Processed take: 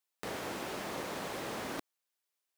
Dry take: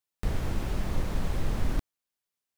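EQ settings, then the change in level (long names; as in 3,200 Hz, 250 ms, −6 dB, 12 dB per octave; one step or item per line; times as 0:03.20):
high-pass filter 370 Hz 12 dB per octave
+1.5 dB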